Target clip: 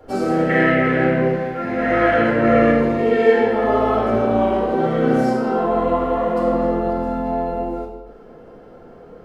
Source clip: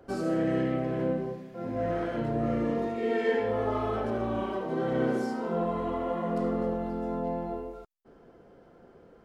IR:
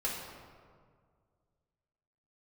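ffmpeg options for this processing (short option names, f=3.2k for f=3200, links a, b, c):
-filter_complex "[0:a]asettb=1/sr,asplit=3[a][b][c];[a]atrim=end=0.494[d];[b]atrim=start=0.49:end=2.71,asetpts=PTS-STARTPTS,afade=t=in:d=0.004:c=qsin,afade=t=out:st=2.216:d=0.004:c=qsin,equalizer=f=1.9k:w=1.1:g=14.5[e];[c]atrim=start=2.706[f];[d][e]acrossfade=d=0.004:c1=hsin:c2=qsin[g];[g][f]acrossfade=d=0.004:c1=qsin:c2=hsin[h];[1:a]atrim=start_sample=2205,afade=t=out:st=0.39:d=0.01,atrim=end_sample=17640[i];[h][i]afir=irnorm=-1:irlink=0,volume=7dB"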